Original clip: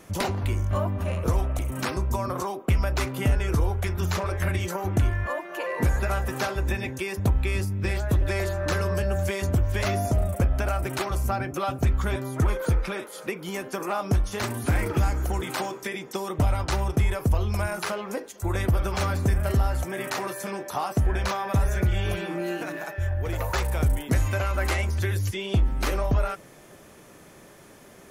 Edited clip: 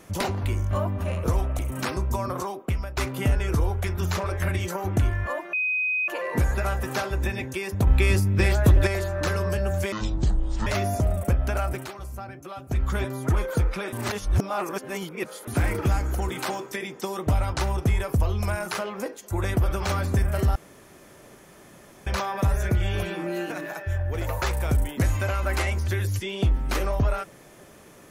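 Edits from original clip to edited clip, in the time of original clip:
2.2–2.97 fade out equal-power, to -13 dB
5.53 add tone 2510 Hz -22 dBFS 0.55 s
7.32–8.32 gain +6 dB
9.37–9.78 speed 55%
10.82–11.96 dip -10.5 dB, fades 0.19 s
13.04–14.59 reverse
19.67–21.18 room tone

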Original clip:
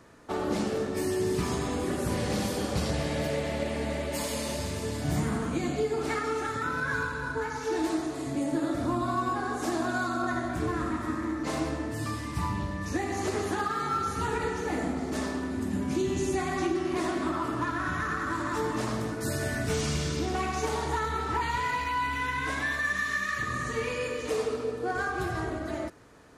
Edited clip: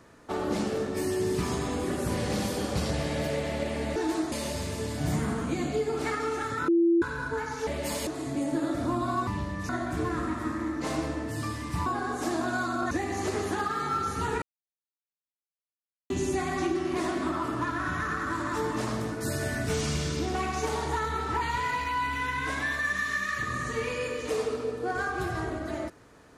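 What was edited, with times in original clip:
3.96–4.36 swap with 7.71–8.07
6.72–7.06 bleep 338 Hz -18.5 dBFS
9.27–10.32 swap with 12.49–12.91
14.42–16.1 mute

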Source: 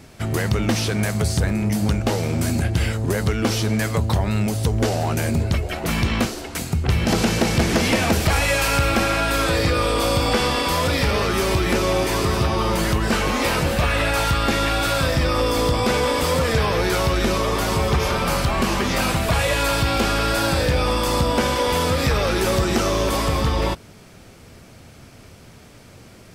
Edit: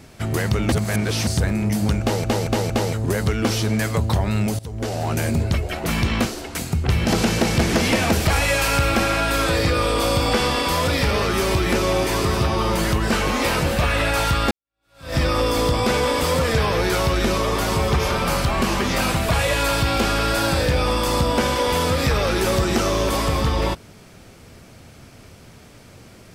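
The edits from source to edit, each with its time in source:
0.72–1.27 reverse
2.01 stutter in place 0.23 s, 4 plays
4.59–5.16 fade in, from -19.5 dB
14.51–15.16 fade in exponential

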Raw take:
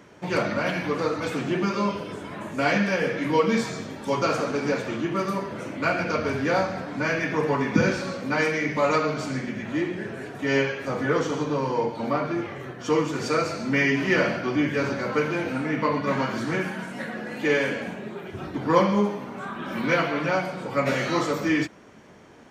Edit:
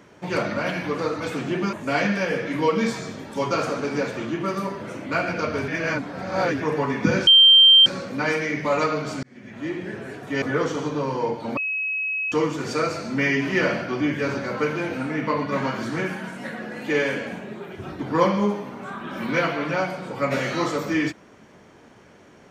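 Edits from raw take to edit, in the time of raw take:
1.73–2.44 cut
6.39–7.31 reverse
7.98 add tone 3150 Hz -8.5 dBFS 0.59 s
9.35–10 fade in
10.54–10.97 cut
12.12–12.87 bleep 2560 Hz -23 dBFS

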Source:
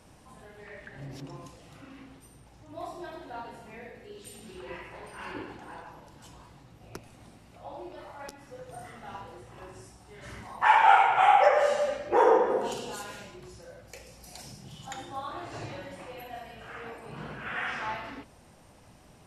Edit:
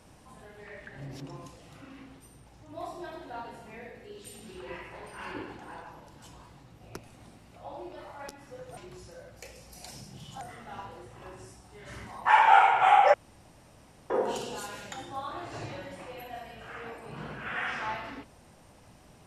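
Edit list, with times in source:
11.5–12.46 room tone
13.28–14.92 move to 8.77

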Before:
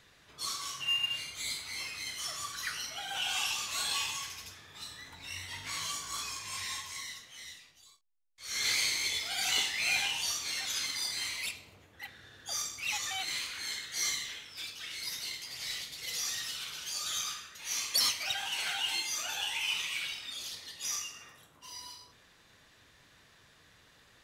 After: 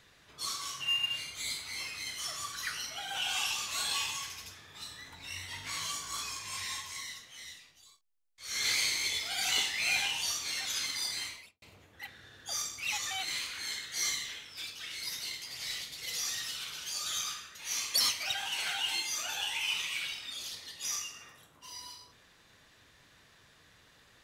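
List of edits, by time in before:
11.14–11.62 studio fade out

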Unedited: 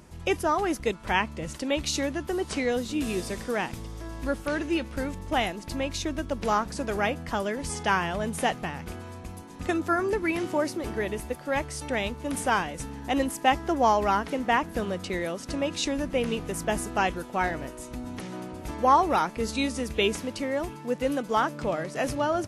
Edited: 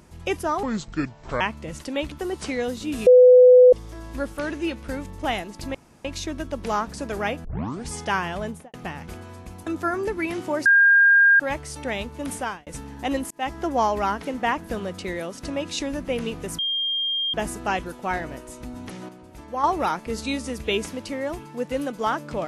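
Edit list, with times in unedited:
0.63–1.15 speed 67%
1.86–2.2 cut
3.15–3.81 bleep 501 Hz -7.5 dBFS
5.83 insert room tone 0.30 s
7.23 tape start 0.44 s
8.2–8.52 studio fade out
9.45–9.72 cut
10.71–11.45 bleep 1610 Hz -11.5 dBFS
12.37–12.72 fade out
13.36–13.63 fade in
16.64 add tone 3210 Hz -22 dBFS 0.75 s
18.39–18.94 gain -7.5 dB

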